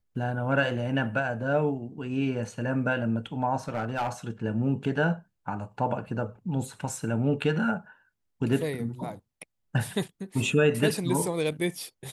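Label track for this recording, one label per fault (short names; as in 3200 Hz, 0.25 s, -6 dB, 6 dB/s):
3.680000	4.090000	clipped -24 dBFS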